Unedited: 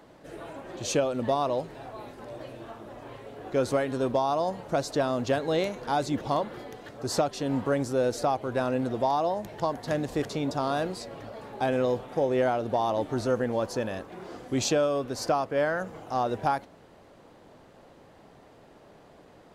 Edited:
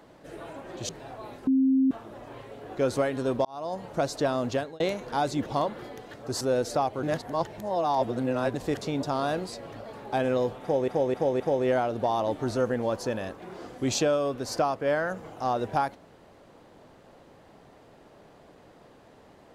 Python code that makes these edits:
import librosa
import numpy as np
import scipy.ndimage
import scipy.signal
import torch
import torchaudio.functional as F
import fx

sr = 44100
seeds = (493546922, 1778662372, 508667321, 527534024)

y = fx.edit(x, sr, fx.cut(start_s=0.89, length_s=0.75),
    fx.bleep(start_s=2.22, length_s=0.44, hz=265.0, db=-18.5),
    fx.fade_in_span(start_s=4.2, length_s=0.43),
    fx.fade_out_span(start_s=5.25, length_s=0.3),
    fx.cut(start_s=7.16, length_s=0.73),
    fx.reverse_span(start_s=8.51, length_s=1.51),
    fx.repeat(start_s=12.1, length_s=0.26, count=4), tone=tone)